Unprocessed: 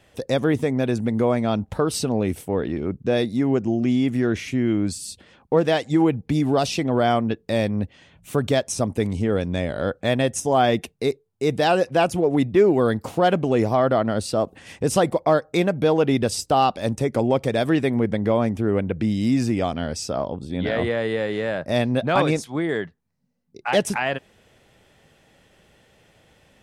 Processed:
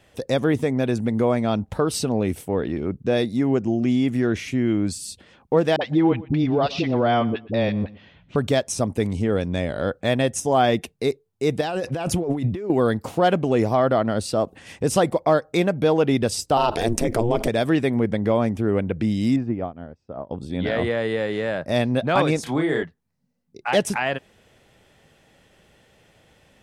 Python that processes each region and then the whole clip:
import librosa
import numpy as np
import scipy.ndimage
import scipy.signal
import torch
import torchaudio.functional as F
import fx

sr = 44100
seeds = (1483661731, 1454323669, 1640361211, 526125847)

y = fx.chain(x, sr, fx.lowpass(hz=4300.0, slope=24),
    fx.dispersion(late='highs', ms=52.0, hz=490.0),
    fx.echo_feedback(ms=120, feedback_pct=20, wet_db=-20.0), at=(5.76, 8.36))
y = fx.chain(y, sr, fx.low_shelf(hz=130.0, db=4.5),
    fx.over_compress(threshold_db=-25.0, ratio=-1.0), at=(11.61, 12.7))
y = fx.chain(y, sr, fx.high_shelf(hz=11000.0, db=4.5),
    fx.ring_mod(carrier_hz=120.0),
    fx.env_flatten(amount_pct=70), at=(16.57, 17.48))
y = fx.chain(y, sr, fx.lowpass(hz=1300.0, slope=12),
    fx.upward_expand(threshold_db=-34.0, expansion=2.5), at=(19.36, 20.31))
y = fx.chain(y, sr, fx.doubler(ms=32.0, db=-3.5),
    fx.band_squash(depth_pct=70), at=(22.43, 22.83))